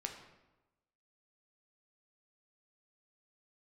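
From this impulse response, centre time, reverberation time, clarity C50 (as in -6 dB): 26 ms, 1.1 s, 7.0 dB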